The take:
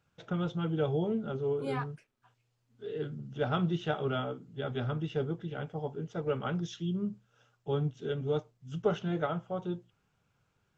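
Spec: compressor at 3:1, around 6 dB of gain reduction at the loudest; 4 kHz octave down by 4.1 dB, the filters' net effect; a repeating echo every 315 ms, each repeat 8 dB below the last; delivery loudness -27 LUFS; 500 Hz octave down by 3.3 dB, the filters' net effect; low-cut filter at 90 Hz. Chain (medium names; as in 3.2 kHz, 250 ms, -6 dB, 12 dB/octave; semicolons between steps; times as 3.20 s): high-pass 90 Hz; peaking EQ 500 Hz -4 dB; peaking EQ 4 kHz -5.5 dB; compression 3:1, threshold -34 dBFS; feedback delay 315 ms, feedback 40%, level -8 dB; trim +12 dB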